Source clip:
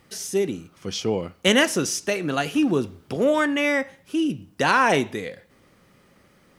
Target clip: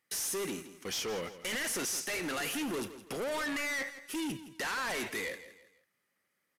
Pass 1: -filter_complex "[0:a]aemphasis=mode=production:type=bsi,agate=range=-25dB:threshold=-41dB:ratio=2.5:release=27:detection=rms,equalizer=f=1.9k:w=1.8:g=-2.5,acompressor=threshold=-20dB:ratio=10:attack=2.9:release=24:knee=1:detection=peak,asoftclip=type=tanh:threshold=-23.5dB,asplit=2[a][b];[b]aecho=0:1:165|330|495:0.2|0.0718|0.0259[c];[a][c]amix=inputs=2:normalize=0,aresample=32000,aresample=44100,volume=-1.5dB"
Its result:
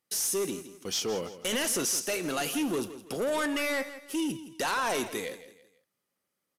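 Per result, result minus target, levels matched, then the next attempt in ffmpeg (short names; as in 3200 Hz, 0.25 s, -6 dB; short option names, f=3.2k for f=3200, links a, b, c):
2000 Hz band -3.5 dB; soft clip: distortion -5 dB
-filter_complex "[0:a]aemphasis=mode=production:type=bsi,agate=range=-25dB:threshold=-41dB:ratio=2.5:release=27:detection=rms,equalizer=f=1.9k:w=1.8:g=8.5,acompressor=threshold=-20dB:ratio=10:attack=2.9:release=24:knee=1:detection=peak,asoftclip=type=tanh:threshold=-23.5dB,asplit=2[a][b];[b]aecho=0:1:165|330|495:0.2|0.0718|0.0259[c];[a][c]amix=inputs=2:normalize=0,aresample=32000,aresample=44100,volume=-1.5dB"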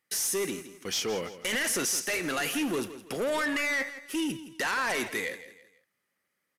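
soft clip: distortion -5 dB
-filter_complex "[0:a]aemphasis=mode=production:type=bsi,agate=range=-25dB:threshold=-41dB:ratio=2.5:release=27:detection=rms,equalizer=f=1.9k:w=1.8:g=8.5,acompressor=threshold=-20dB:ratio=10:attack=2.9:release=24:knee=1:detection=peak,asoftclip=type=tanh:threshold=-31.5dB,asplit=2[a][b];[b]aecho=0:1:165|330|495:0.2|0.0718|0.0259[c];[a][c]amix=inputs=2:normalize=0,aresample=32000,aresample=44100,volume=-1.5dB"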